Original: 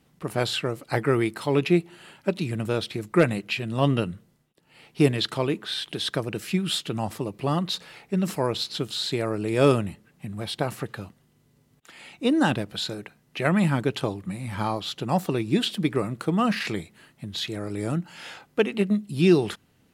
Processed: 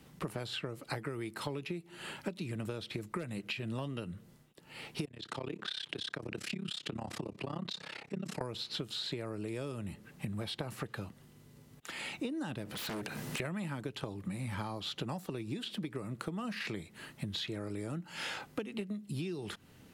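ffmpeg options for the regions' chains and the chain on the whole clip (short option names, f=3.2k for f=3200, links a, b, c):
-filter_complex "[0:a]asettb=1/sr,asplit=3[a][b][c];[a]atrim=end=5.054[d];[b]atrim=start=5.05:end=8.41,asetpts=PTS-STARTPTS,afade=t=in:d=0.004:c=qsin,afade=t=out:st=3.356:d=0.004:c=qsin,acompressor=threshold=-31dB:ratio=4:attack=3.2:release=140:knee=1:detection=peak,tremolo=f=33:d=0.974,highpass=100,lowpass=7.4k[e];[c]atrim=start=8.406[f];[d][e]acrossfade=d=0.004:c1=hsin:c2=qsin[g];[g][f]acrossfade=d=0.004:c1=qsin:c2=hsin,asettb=1/sr,asplit=3[h][i][j];[h]atrim=end=12.654[k];[i]atrim=start=12.65:end=13.4,asetpts=PTS-STARTPTS,afade=t=in:d=0.004:c=qsin,afade=t=out:st=0.746:d=0.004:c=qsin,aeval=exprs='0.133*sin(PI/2*6.31*val(0)/0.133)':c=same,highpass=f=130:p=1,acompressor=threshold=-38dB:ratio=6:attack=3.2:release=140:knee=1:detection=peak[l];[j]atrim=start=13.396[m];[k][l]acrossfade=d=0.004:c1=hsin:c2=qsin[n];[n][m]acrossfade=d=0.004:c1=qsin:c2=hsin,acrossover=split=260|4200[o][p][q];[o]acompressor=threshold=-29dB:ratio=4[r];[p]acompressor=threshold=-28dB:ratio=4[s];[q]acompressor=threshold=-44dB:ratio=4[t];[r][s][t]amix=inputs=3:normalize=0,bandreject=f=710:w=18,acompressor=threshold=-40dB:ratio=16,volume=5dB"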